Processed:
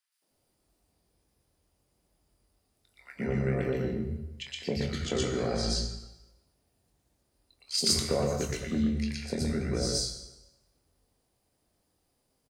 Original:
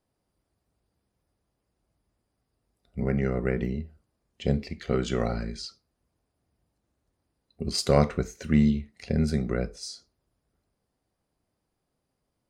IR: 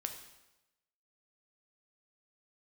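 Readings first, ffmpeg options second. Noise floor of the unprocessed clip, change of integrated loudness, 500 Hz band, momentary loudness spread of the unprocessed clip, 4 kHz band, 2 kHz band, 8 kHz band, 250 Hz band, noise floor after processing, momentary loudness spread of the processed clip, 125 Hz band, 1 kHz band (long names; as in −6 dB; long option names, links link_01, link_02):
−81 dBFS, −3.0 dB, −3.0 dB, 16 LU, +5.5 dB, −1.5 dB, +7.0 dB, −4.5 dB, −76 dBFS, 11 LU, −4.5 dB, −5.5 dB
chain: -filter_complex "[0:a]acompressor=threshold=-28dB:ratio=4,asplit=2[link_01][link_02];[link_02]adelay=23,volume=-7.5dB[link_03];[link_01][link_03]amix=inputs=2:normalize=0,acrossover=split=160|1400[link_04][link_05][link_06];[link_05]adelay=220[link_07];[link_04]adelay=310[link_08];[link_08][link_07][link_06]amix=inputs=3:normalize=0,asplit=2[link_09][link_10];[1:a]atrim=start_sample=2205,highshelf=frequency=2700:gain=11.5,adelay=120[link_11];[link_10][link_11]afir=irnorm=-1:irlink=0,volume=-3.5dB[link_12];[link_09][link_12]amix=inputs=2:normalize=0,volume=2dB"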